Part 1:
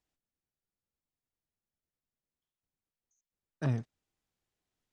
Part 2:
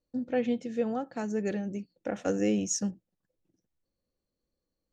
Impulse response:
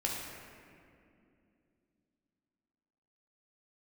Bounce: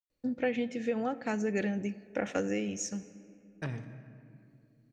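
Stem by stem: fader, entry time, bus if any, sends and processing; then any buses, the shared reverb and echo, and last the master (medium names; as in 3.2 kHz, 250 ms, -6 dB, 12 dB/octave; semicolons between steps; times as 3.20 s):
-3.0 dB, 0.00 s, send -9.5 dB, expander -46 dBFS; compression, threshold -32 dBFS, peak gain reduction 7.5 dB
+0.5 dB, 0.10 s, send -19.5 dB, compression, threshold -28 dBFS, peak gain reduction 6 dB; auto duck -16 dB, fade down 1.30 s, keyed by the first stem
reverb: on, RT60 2.5 s, pre-delay 10 ms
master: peaking EQ 2.2 kHz +9 dB 0.9 oct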